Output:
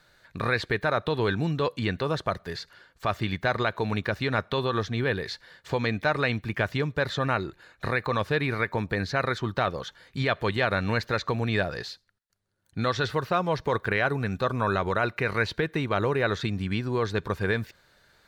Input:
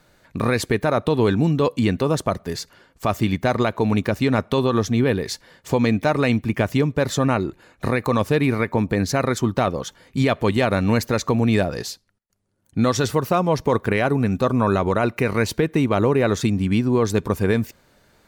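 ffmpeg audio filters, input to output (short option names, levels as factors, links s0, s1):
-filter_complex "[0:a]acrossover=split=4300[s0][s1];[s1]acompressor=threshold=0.00355:ratio=4:attack=1:release=60[s2];[s0][s2]amix=inputs=2:normalize=0,equalizer=f=250:t=o:w=0.67:g=-7,equalizer=f=1600:t=o:w=0.67:g=8,equalizer=f=4000:t=o:w=0.67:g=8,volume=0.473"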